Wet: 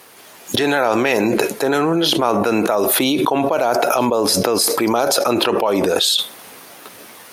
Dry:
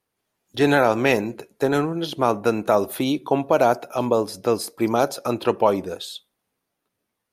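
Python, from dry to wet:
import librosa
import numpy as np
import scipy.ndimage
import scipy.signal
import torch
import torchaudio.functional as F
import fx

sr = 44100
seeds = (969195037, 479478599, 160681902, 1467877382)

p1 = fx.rider(x, sr, range_db=10, speed_s=2.0)
p2 = x + F.gain(torch.from_numpy(p1), 1.5).numpy()
p3 = fx.highpass(p2, sr, hz=460.0, slope=6)
p4 = fx.env_flatten(p3, sr, amount_pct=100)
y = F.gain(torch.from_numpy(p4), -9.0).numpy()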